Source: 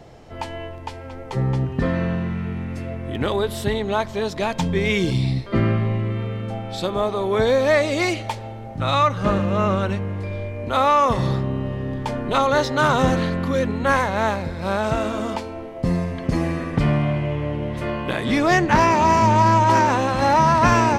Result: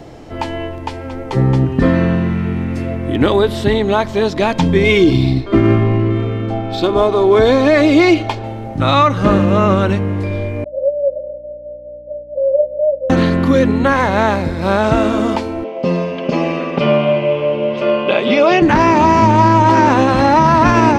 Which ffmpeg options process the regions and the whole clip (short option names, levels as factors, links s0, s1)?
-filter_complex "[0:a]asettb=1/sr,asplit=3[s0][s1][s2];[s0]atrim=end=4.834[s3];[s1]atrim=start=4.83:end=8.44,asetpts=PTS-STARTPTS,afade=t=in:d=0.004:c=qsin,afade=t=out:st=3.606:d=0.004:c=qsin,bandreject=f=1900:w=12,adynamicsmooth=sensitivity=5.5:basefreq=4300,aecho=1:1:2.8:0.45,atrim=end_sample=159201[s4];[s2]atrim=start=8.436[s5];[s3][s4]acrossfade=d=0.004:c1=hsin:c2=qsin[s6];[s6][s5]acrossfade=d=0.004:c1=qsin:c2=hsin,asettb=1/sr,asplit=3[s7][s8][s9];[s7]atrim=end=10.644[s10];[s8]atrim=start=10.64:end=13.1,asetpts=PTS-STARTPTS,afade=t=in:d=0.004:c=qsin,afade=t=out:st=2.456:d=0.004:c=qsin,asuperpass=centerf=570:order=20:qfactor=5.4,asplit=2[s11][s12];[s12]adelay=18,volume=0.501[s13];[s11][s13]amix=inputs=2:normalize=0,atrim=end_sample=108486,aeval=exprs='val(0)+0.002*(sin(2*PI*60*n/s)+sin(2*PI*2*60*n/s)/2+sin(2*PI*3*60*n/s)/3+sin(2*PI*4*60*n/s)/4+sin(2*PI*5*60*n/s)/5)':c=same[s14];[s9]atrim=start=13.096[s15];[s10][s14]acrossfade=d=0.004:c1=hsin:c2=qsin[s16];[s16][s15]acrossfade=d=0.004:c1=qsin:c2=hsin,asettb=1/sr,asplit=3[s17][s18][s19];[s17]atrim=end=15.644[s20];[s18]atrim=start=15.64:end=18.62,asetpts=PTS-STARTPTS,afade=t=in:d=0.004:c=qsin,afade=t=out:st=2.976:d=0.004:c=qsin,highpass=260,equalizer=f=300:t=q:w=4:g=-9,equalizer=f=540:t=q:w=4:g=8,equalizer=f=1800:t=q:w=4:g=-10,equalizer=f=2700:t=q:w=4:g=9,equalizer=f=4000:t=q:w=4:g=-4,lowpass=f=5300:w=0.5412,lowpass=f=5300:w=1.3066,aecho=1:1:5:0.46,atrim=end_sample=131418[s21];[s19]atrim=start=18.616[s22];[s20][s21]acrossfade=d=0.004:c1=hsin:c2=qsin[s23];[s23][s22]acrossfade=d=0.004:c1=qsin:c2=hsin,acrossover=split=5800[s24][s25];[s25]acompressor=threshold=0.00251:ratio=4:attack=1:release=60[s26];[s24][s26]amix=inputs=2:normalize=0,equalizer=f=300:w=2.8:g=8,alimiter=level_in=2.66:limit=0.891:release=50:level=0:latency=1,volume=0.891"